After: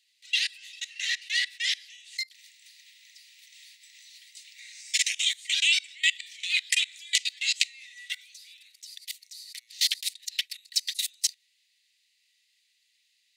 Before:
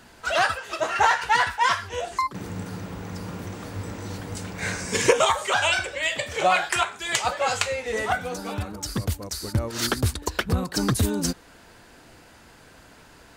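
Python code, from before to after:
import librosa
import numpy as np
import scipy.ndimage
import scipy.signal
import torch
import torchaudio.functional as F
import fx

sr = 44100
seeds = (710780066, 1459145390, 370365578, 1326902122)

y = fx.peak_eq(x, sr, hz=3900.0, db=11.0, octaves=0.54)
y = fx.level_steps(y, sr, step_db=23)
y = scipy.signal.sosfilt(scipy.signal.cheby1(6, 3, 1900.0, 'highpass', fs=sr, output='sos'), y)
y = F.gain(torch.from_numpy(y), 4.0).numpy()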